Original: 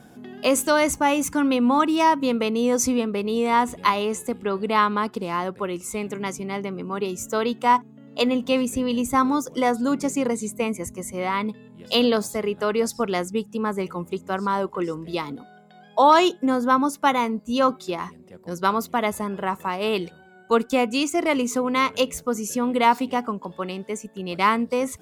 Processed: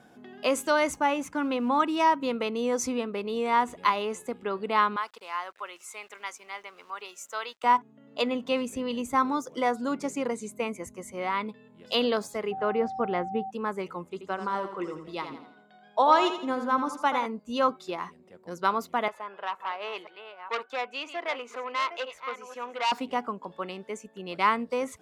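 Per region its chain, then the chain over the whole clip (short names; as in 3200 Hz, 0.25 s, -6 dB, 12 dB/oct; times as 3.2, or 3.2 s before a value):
1.06–1.69 G.711 law mismatch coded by A + high shelf 4100 Hz -6 dB
4.96–7.64 HPF 950 Hz + sample gate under -52.5 dBFS + mismatched tape noise reduction encoder only
12.51–13.49 LPF 2200 Hz + bell 72 Hz +8.5 dB 2.9 oct + whine 770 Hz -29 dBFS
14.05–17.26 LPF 12000 Hz + tremolo 7.7 Hz, depth 39% + feedback echo 82 ms, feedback 42%, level -9 dB
19.08–22.92 reverse delay 0.495 s, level -11 dB + three-band isolator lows -22 dB, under 510 Hz, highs -17 dB, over 3700 Hz + core saturation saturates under 3100 Hz
whole clip: LPF 3400 Hz 6 dB/oct; low shelf 270 Hz -11.5 dB; gain -2.5 dB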